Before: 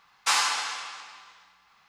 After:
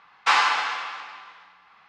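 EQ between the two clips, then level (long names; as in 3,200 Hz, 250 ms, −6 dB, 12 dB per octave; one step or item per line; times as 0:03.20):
low-pass filter 2,700 Hz 12 dB per octave
low-shelf EQ 120 Hz −11.5 dB
+7.5 dB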